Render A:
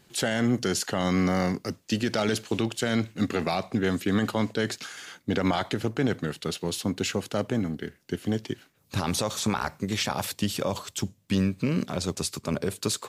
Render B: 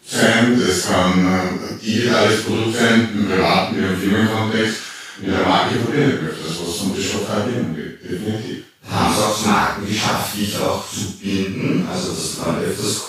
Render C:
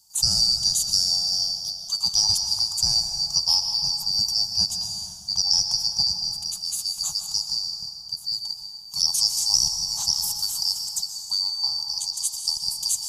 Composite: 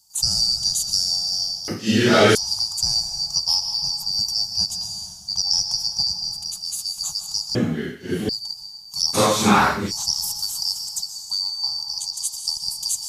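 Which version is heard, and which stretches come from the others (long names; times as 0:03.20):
C
0:01.68–0:02.35: punch in from B
0:07.55–0:08.29: punch in from B
0:09.16–0:09.89: punch in from B, crossfade 0.06 s
not used: A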